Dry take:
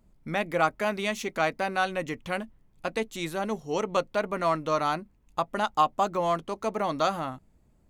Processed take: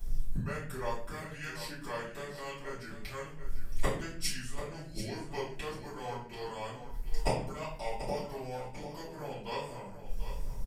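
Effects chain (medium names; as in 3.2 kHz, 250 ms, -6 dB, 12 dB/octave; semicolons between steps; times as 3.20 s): bass shelf 110 Hz +11.5 dB; harmonic-percussive split percussive +5 dB; inverted gate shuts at -26 dBFS, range -27 dB; speed mistake 45 rpm record played at 33 rpm; pre-emphasis filter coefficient 0.8; feedback delay 739 ms, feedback 25%, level -11 dB; simulated room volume 54 m³, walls mixed, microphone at 2.8 m; trim +10.5 dB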